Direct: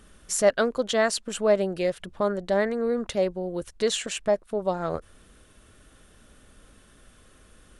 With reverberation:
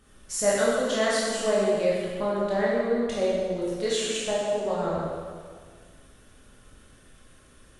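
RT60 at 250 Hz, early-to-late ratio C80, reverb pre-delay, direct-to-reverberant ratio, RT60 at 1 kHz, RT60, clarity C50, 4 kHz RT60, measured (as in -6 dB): 1.9 s, 0.5 dB, 14 ms, -7.0 dB, 1.7 s, 1.8 s, -2.0 dB, 1.6 s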